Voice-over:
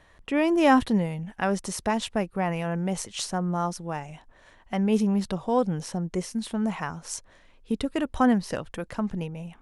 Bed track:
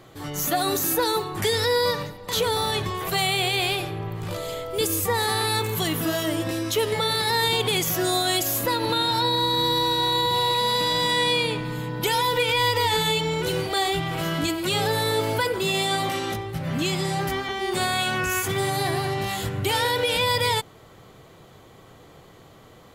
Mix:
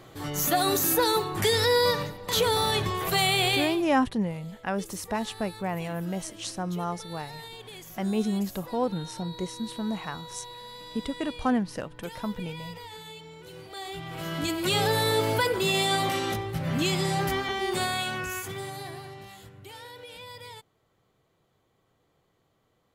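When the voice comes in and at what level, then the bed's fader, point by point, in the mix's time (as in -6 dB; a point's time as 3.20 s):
3.25 s, -4.0 dB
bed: 3.54 s -0.5 dB
3.95 s -21 dB
13.45 s -21 dB
14.66 s -1 dB
17.56 s -1 dB
19.60 s -21.5 dB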